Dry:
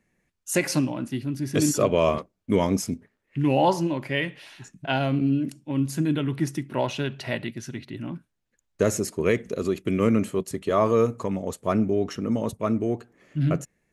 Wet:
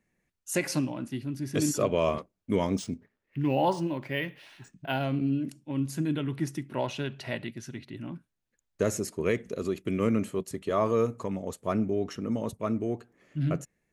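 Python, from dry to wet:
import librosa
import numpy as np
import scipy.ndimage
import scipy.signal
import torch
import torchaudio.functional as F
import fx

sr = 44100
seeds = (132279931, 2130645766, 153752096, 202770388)

y = fx.resample_linear(x, sr, factor=3, at=(2.78, 5.04))
y = y * 10.0 ** (-5.0 / 20.0)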